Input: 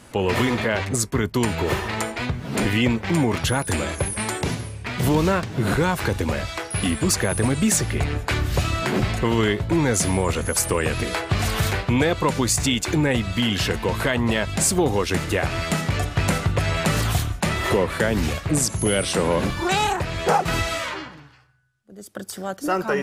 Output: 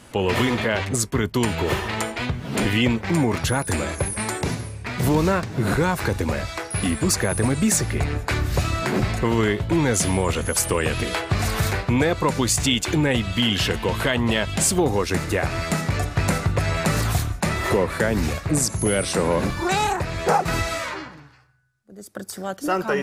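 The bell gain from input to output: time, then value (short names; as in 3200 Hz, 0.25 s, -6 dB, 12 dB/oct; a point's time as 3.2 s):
bell 3100 Hz 0.37 oct
+2.5 dB
from 3.01 s -5 dB
from 9.54 s +3 dB
from 11.29 s -5.5 dB
from 12.39 s +4 dB
from 14.8 s -6.5 dB
from 22.44 s +2.5 dB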